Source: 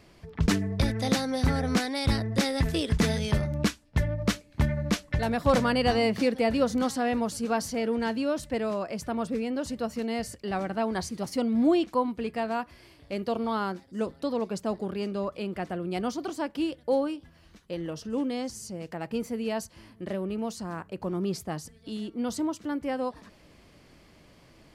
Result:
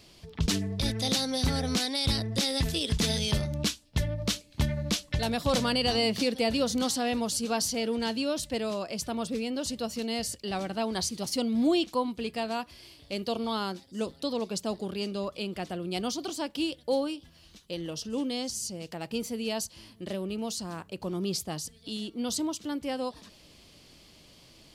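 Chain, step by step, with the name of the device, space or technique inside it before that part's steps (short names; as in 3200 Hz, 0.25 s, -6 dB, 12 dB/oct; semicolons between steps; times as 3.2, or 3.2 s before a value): over-bright horn tweeter (resonant high shelf 2500 Hz +8.5 dB, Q 1.5; limiter -14.5 dBFS, peak gain reduction 7.5 dB); gain -2 dB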